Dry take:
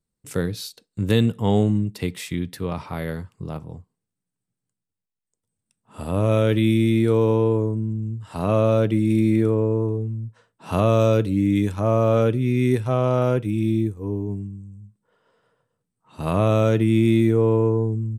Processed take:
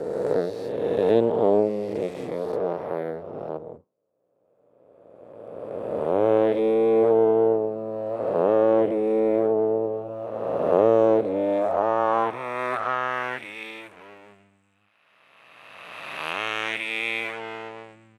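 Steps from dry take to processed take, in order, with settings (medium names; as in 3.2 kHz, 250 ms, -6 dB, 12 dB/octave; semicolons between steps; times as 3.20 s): reverse spectral sustain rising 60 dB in 2.25 s; treble shelf 7.6 kHz +9 dB; half-wave rectifier; band-pass sweep 500 Hz -> 2.4 kHz, 11.23–13.70 s; trim +8 dB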